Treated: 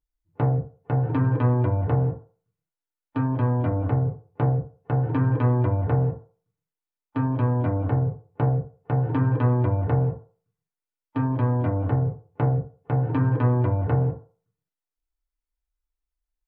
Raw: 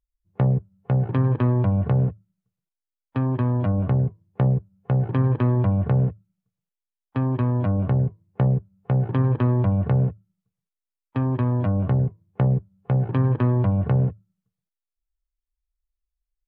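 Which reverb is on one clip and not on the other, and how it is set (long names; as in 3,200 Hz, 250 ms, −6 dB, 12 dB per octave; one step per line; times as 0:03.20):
feedback delay network reverb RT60 0.4 s, low-frequency decay 0.7×, high-frequency decay 0.25×, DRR −4.5 dB
level −5 dB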